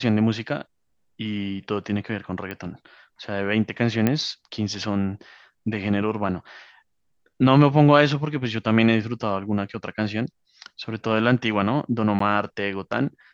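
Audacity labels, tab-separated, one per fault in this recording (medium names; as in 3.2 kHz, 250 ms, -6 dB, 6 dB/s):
2.510000	2.510000	pop -19 dBFS
4.070000	4.070000	pop -8 dBFS
12.190000	12.200000	dropout 14 ms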